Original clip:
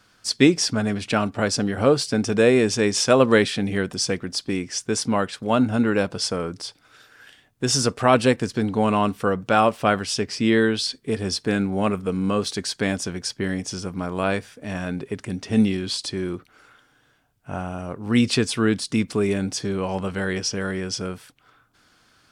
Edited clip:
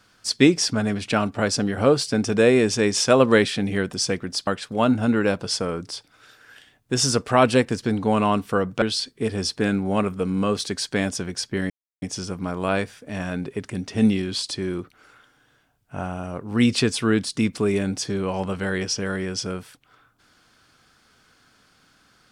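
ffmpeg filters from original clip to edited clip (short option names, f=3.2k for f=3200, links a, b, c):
-filter_complex "[0:a]asplit=4[a][b][c][d];[a]atrim=end=4.472[e];[b]atrim=start=5.178:end=9.532[f];[c]atrim=start=10.688:end=13.57,asetpts=PTS-STARTPTS,afade=t=out:st=2.878:d=0.004:c=hsin,apad=pad_dur=0.32[g];[d]atrim=start=13.57,asetpts=PTS-STARTPTS,afade=t=in:d=0.004:c=hsin[h];[e][f]acrossfade=d=0.004:c1=hsin:c2=hsin[i];[g][h]concat=n=2:v=0:a=1[j];[i][j]acrossfade=d=0.004:c1=hsin:c2=hsin"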